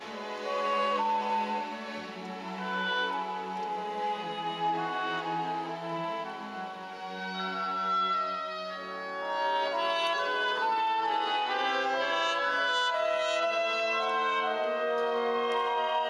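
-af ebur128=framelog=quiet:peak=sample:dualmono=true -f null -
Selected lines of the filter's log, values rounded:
Integrated loudness:
  I:         -27.3 LUFS
  Threshold: -37.3 LUFS
Loudness range:
  LRA:         5.4 LU
  Threshold: -47.4 LUFS
  LRA low:   -30.5 LUFS
  LRA high:  -25.1 LUFS
Sample peak:
  Peak:      -15.2 dBFS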